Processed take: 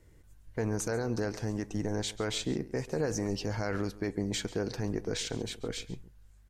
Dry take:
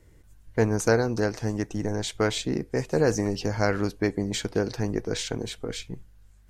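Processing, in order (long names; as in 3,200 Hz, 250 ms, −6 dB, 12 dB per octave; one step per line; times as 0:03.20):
brickwall limiter −18.5 dBFS, peak gain reduction 11 dB
single-tap delay 138 ms −18 dB
level −3.5 dB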